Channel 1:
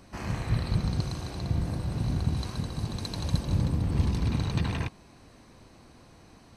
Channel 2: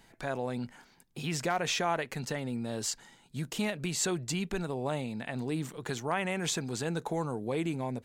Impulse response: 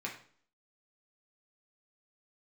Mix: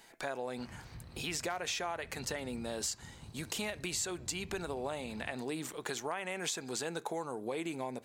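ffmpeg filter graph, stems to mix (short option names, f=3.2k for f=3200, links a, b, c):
-filter_complex "[0:a]alimiter=limit=-22.5dB:level=0:latency=1:release=222,adelay=450,volume=-17.5dB[a];[1:a]bass=f=250:g=-13,treble=f=4k:g=3,volume=1.5dB,asplit=2[b][c];[c]volume=-17.5dB[d];[2:a]atrim=start_sample=2205[e];[d][e]afir=irnorm=-1:irlink=0[f];[a][b][f]amix=inputs=3:normalize=0,acompressor=threshold=-34dB:ratio=5"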